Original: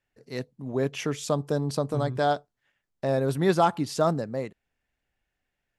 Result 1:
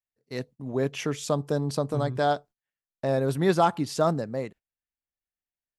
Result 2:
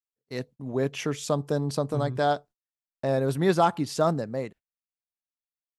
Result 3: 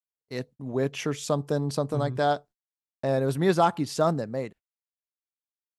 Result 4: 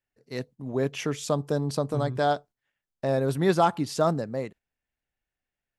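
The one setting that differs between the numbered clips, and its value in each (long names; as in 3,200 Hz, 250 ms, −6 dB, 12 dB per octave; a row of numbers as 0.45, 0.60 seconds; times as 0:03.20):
noise gate, range: −21, −35, −56, −8 decibels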